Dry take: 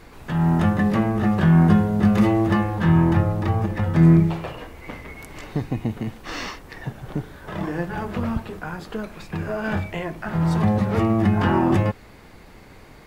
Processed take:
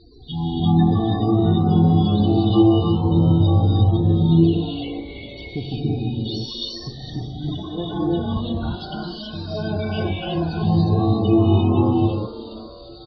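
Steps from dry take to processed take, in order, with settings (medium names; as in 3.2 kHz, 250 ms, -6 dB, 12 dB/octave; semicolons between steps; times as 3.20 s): high-pass 51 Hz 6 dB/octave; resonant high shelf 2.6 kHz +13 dB, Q 3; comb 2.7 ms, depth 34%; peak limiter -13 dBFS, peak gain reduction 6.5 dB; LFO notch square 2.2 Hz 430–3300 Hz; loudest bins only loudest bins 16; distance through air 180 m; frequency-shifting echo 408 ms, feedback 31%, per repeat +120 Hz, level -15 dB; gated-style reverb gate 380 ms rising, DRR -4.5 dB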